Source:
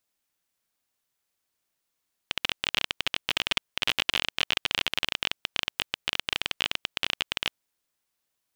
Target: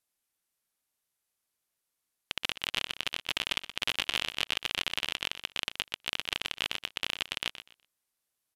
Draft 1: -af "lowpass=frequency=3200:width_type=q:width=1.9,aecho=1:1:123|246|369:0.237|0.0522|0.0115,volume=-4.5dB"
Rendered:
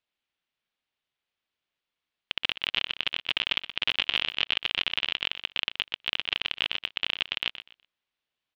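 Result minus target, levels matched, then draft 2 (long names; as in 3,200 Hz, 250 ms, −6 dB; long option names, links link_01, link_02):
8,000 Hz band −18.0 dB
-af "lowpass=frequency=12000:width_type=q:width=1.9,aecho=1:1:123|246|369:0.237|0.0522|0.0115,volume=-4.5dB"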